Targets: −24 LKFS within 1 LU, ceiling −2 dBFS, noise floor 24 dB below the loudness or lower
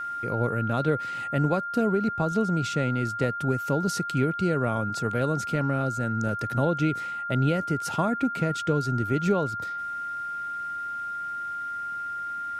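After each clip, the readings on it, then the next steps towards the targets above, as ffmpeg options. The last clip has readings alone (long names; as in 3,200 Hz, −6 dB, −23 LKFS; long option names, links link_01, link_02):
interfering tone 1,400 Hz; level of the tone −30 dBFS; integrated loudness −27.0 LKFS; sample peak −11.5 dBFS; target loudness −24.0 LKFS
→ -af "bandreject=frequency=1400:width=30"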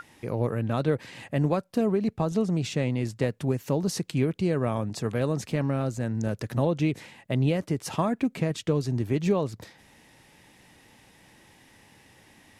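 interfering tone none found; integrated loudness −28.0 LKFS; sample peak −11.5 dBFS; target loudness −24.0 LKFS
→ -af "volume=4dB"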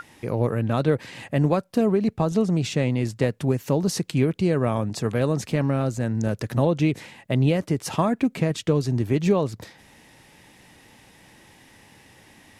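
integrated loudness −24.0 LKFS; sample peak −7.5 dBFS; background noise floor −53 dBFS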